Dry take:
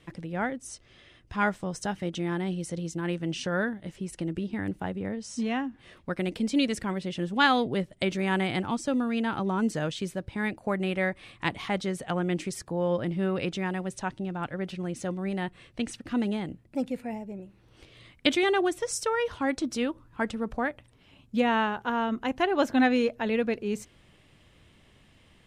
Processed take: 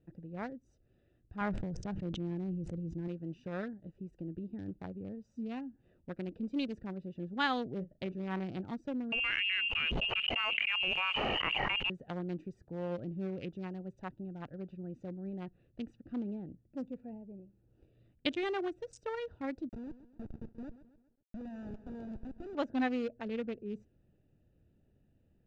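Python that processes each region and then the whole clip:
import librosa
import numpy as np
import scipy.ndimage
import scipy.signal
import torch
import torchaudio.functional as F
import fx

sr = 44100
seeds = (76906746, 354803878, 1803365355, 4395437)

y = fx.chain(x, sr, fx.lowpass(hz=2300.0, slope=6),
    fx.low_shelf(hz=140.0, db=9.0),
    fx.sustainer(db_per_s=23.0), at=(1.41, 3.08))
y = fx.chain(y, sr, fx.high_shelf(hz=3900.0, db=-10.5),
    fx.doubler(ms=38.0, db=-11.0), at=(7.75, 8.61))
y = fx.chain(y, sr, fx.freq_invert(carrier_hz=3000),
    fx.env_flatten(amount_pct=100), at=(9.12, 11.9))
y = fx.chain(y, sr, fx.peak_eq(hz=840.0, db=-10.5, octaves=1.0),
    fx.schmitt(flips_db=-30.5),
    fx.echo_crushed(ms=132, feedback_pct=55, bits=9, wet_db=-13.5), at=(19.69, 22.55))
y = fx.wiener(y, sr, points=41)
y = scipy.signal.sosfilt(scipy.signal.butter(4, 7200.0, 'lowpass', fs=sr, output='sos'), y)
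y = y * 10.0 ** (-9.0 / 20.0)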